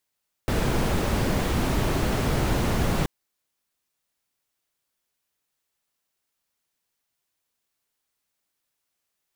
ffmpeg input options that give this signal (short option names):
-f lavfi -i "anoisesrc=c=brown:a=0.331:d=2.58:r=44100:seed=1"